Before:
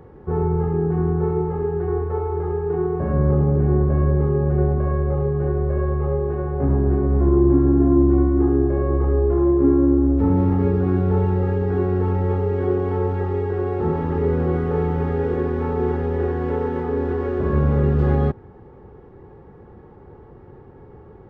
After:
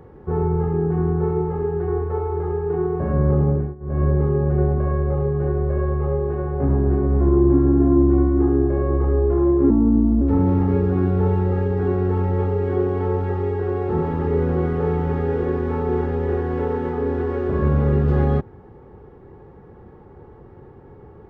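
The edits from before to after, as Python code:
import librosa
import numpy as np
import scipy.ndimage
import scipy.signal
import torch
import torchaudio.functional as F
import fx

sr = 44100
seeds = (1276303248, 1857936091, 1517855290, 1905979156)

y = fx.edit(x, sr, fx.fade_down_up(start_s=3.51, length_s=0.53, db=-23.5, fade_s=0.24),
    fx.speed_span(start_s=9.7, length_s=0.42, speed=0.82), tone=tone)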